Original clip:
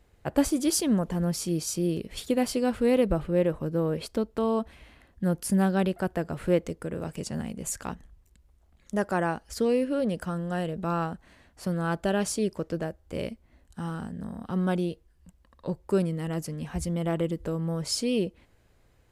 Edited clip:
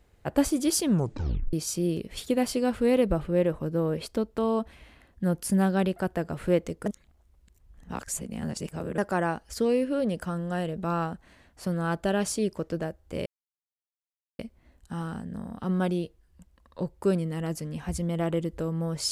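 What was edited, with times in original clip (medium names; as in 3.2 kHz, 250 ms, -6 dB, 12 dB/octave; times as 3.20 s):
0.88 s: tape stop 0.65 s
6.86–8.98 s: reverse
13.26 s: insert silence 1.13 s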